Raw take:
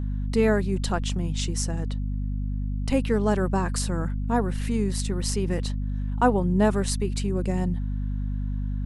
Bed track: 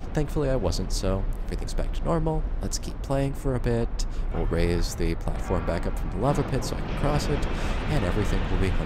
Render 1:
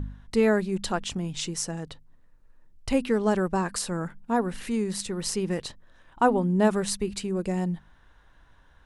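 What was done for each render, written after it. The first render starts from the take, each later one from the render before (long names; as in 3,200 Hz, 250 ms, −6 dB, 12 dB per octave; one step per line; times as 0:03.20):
hum removal 50 Hz, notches 5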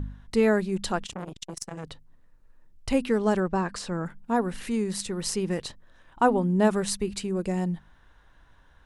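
0:01.06–0:01.84: saturating transformer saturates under 2,000 Hz
0:03.40–0:04.06: high-frequency loss of the air 85 metres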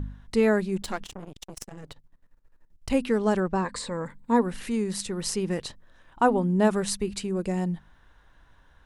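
0:00.82–0:02.90: gain on one half-wave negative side −12 dB
0:03.64–0:04.43: EQ curve with evenly spaced ripples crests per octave 1, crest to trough 10 dB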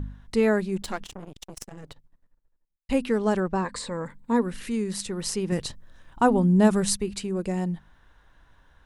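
0:01.79–0:02.89: fade out and dull
0:04.32–0:04.92: parametric band 780 Hz −6.5 dB
0:05.52–0:06.96: bass and treble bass +7 dB, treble +5 dB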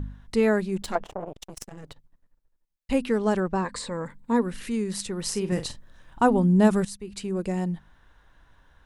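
0:00.95–0:01.42: drawn EQ curve 250 Hz 0 dB, 630 Hz +14 dB, 4,000 Hz −10 dB
0:05.30–0:06.25: double-tracking delay 44 ms −10 dB
0:06.85–0:07.28: fade in quadratic, from −14.5 dB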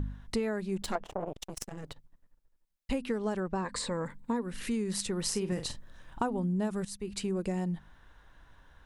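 downward compressor 10 to 1, threshold −28 dBFS, peak gain reduction 15.5 dB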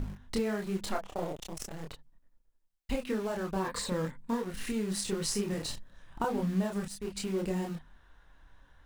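in parallel at −8 dB: bit-depth reduction 6 bits, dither none
on the sum: multi-voice chorus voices 4, 0.99 Hz, delay 28 ms, depth 4 ms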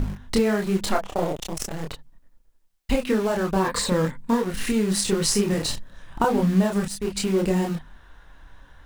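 level +10.5 dB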